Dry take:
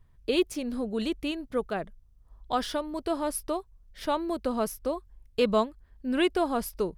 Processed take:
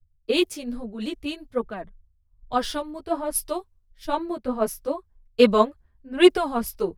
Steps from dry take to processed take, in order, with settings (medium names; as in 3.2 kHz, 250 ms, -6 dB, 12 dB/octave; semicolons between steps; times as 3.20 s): chorus voices 2, 1.2 Hz, delay 11 ms, depth 3 ms; three bands expanded up and down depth 100%; trim +5.5 dB